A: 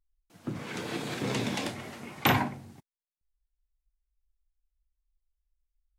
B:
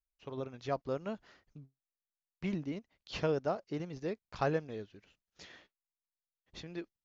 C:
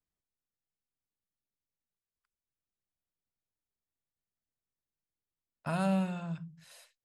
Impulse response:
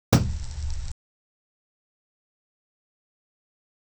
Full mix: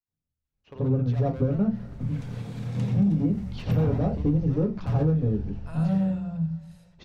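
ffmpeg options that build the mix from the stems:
-filter_complex "[0:a]equalizer=frequency=330:width_type=o:width=0.88:gain=-9,adelay=1450,volume=-13.5dB,asplit=2[link_01][link_02];[link_02]volume=-17.5dB[link_03];[1:a]aemphasis=mode=reproduction:type=50fm,asoftclip=type=hard:threshold=-35dB,adelay=450,volume=2dB,asplit=2[link_04][link_05];[link_05]volume=-15.5dB[link_06];[2:a]volume=-10.5dB,asplit=2[link_07][link_08];[link_08]volume=-17dB[link_09];[link_01][link_04]amix=inputs=2:normalize=0,acompressor=threshold=-40dB:ratio=6,volume=0dB[link_10];[3:a]atrim=start_sample=2205[link_11];[link_03][link_06][link_09]amix=inputs=3:normalize=0[link_12];[link_12][link_11]afir=irnorm=-1:irlink=0[link_13];[link_07][link_10][link_13]amix=inputs=3:normalize=0,acompressor=threshold=-19dB:ratio=6"

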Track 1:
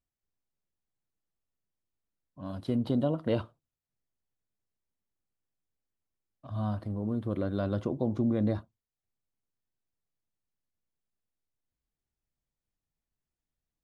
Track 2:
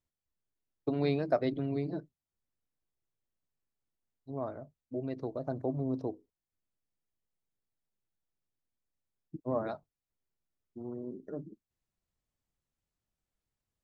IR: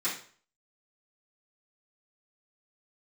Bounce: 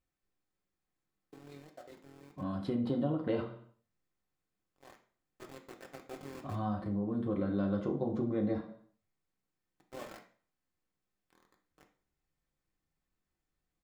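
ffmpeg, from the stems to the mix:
-filter_complex "[0:a]highshelf=frequency=3800:gain=-10.5,volume=3dB,asplit=2[link_01][link_02];[link_02]volume=-5.5dB[link_03];[1:a]tremolo=f=42:d=0.519,aeval=exprs='val(0)*gte(abs(val(0)),0.0211)':channel_layout=same,agate=range=-12dB:threshold=-43dB:ratio=16:detection=peak,adelay=450,volume=-11dB,afade=type=in:start_time=4.73:duration=0.55:silence=0.281838,asplit=2[link_04][link_05];[link_05]volume=-7.5dB[link_06];[2:a]atrim=start_sample=2205[link_07];[link_03][link_06]amix=inputs=2:normalize=0[link_08];[link_08][link_07]afir=irnorm=-1:irlink=0[link_09];[link_01][link_04][link_09]amix=inputs=3:normalize=0,acompressor=threshold=-36dB:ratio=2"

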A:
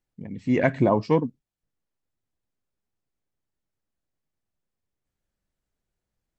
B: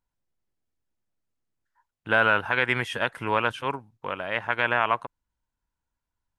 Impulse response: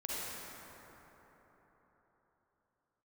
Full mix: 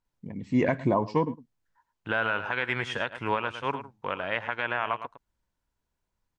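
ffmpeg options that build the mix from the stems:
-filter_complex "[0:a]equalizer=frequency=1000:width_type=o:width=0.3:gain=7,adelay=50,volume=-1.5dB,asplit=2[link_01][link_02];[link_02]volume=-20dB[link_03];[1:a]lowpass=frequency=7400:width=0.5412,lowpass=frequency=7400:width=1.3066,volume=0dB,asplit=2[link_04][link_05];[link_05]volume=-13dB[link_06];[link_03][link_06]amix=inputs=2:normalize=0,aecho=0:1:107:1[link_07];[link_01][link_04][link_07]amix=inputs=3:normalize=0,alimiter=limit=-14dB:level=0:latency=1:release=293"

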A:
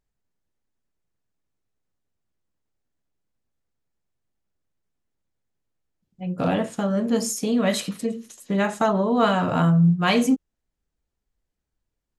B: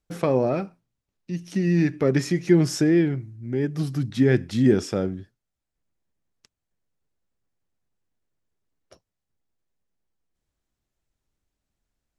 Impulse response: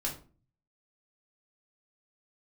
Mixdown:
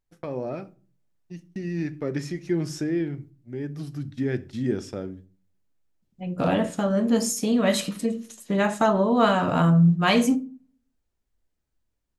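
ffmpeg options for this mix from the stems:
-filter_complex "[0:a]volume=0.5dB,asplit=2[link_01][link_02];[link_02]volume=-18dB[link_03];[1:a]agate=range=-38dB:threshold=-32dB:ratio=16:detection=peak,volume=-13.5dB,asplit=3[link_04][link_05][link_06];[link_05]volume=-13dB[link_07];[link_06]apad=whole_len=537494[link_08];[link_01][link_08]sidechaingate=range=-6dB:threshold=-53dB:ratio=16:detection=peak[link_09];[2:a]atrim=start_sample=2205[link_10];[link_03][link_07]amix=inputs=2:normalize=0[link_11];[link_11][link_10]afir=irnorm=-1:irlink=0[link_12];[link_09][link_04][link_12]amix=inputs=3:normalize=0,dynaudnorm=framelen=270:gausssize=3:maxgain=4dB"

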